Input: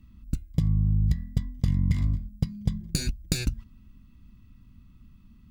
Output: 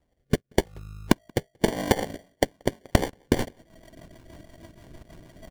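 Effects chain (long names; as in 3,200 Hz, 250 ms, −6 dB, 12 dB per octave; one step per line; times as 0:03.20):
elliptic high-pass filter 2,400 Hz, stop band 50 dB, from 0:01.66 560 Hz
noise reduction from a noise print of the clip's start 25 dB
downward compressor 8 to 1, threshold −52 dBFS, peak gain reduction 23 dB
decimation without filtering 34×
rotating-speaker cabinet horn 0.9 Hz, later 6.3 Hz, at 0:01.84
slap from a distant wall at 31 metres, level −24 dB
transient designer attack +4 dB, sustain −9 dB
boost into a limiter +35 dB
level −1 dB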